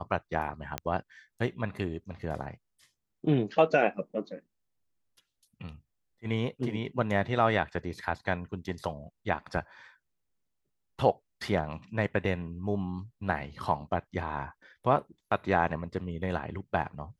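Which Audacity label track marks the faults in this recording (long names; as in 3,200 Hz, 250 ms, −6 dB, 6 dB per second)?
0.780000	0.780000	click −15 dBFS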